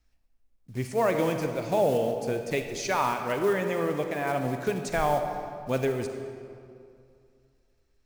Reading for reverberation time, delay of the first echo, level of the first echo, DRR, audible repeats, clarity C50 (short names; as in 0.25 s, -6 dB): 2.4 s, none, none, 5.5 dB, none, 6.0 dB